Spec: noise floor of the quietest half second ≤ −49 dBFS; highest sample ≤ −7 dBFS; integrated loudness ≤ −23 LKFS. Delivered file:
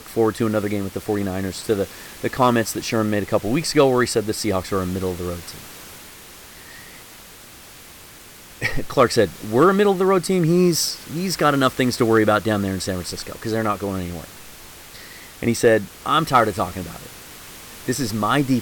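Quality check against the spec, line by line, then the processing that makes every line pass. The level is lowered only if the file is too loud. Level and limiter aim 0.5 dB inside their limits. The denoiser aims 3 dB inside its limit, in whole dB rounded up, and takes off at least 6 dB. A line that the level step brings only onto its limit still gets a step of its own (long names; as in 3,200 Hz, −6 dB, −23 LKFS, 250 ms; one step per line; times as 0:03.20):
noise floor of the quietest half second −43 dBFS: out of spec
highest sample −5.0 dBFS: out of spec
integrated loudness −20.5 LKFS: out of spec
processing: broadband denoise 6 dB, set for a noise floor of −43 dBFS
level −3 dB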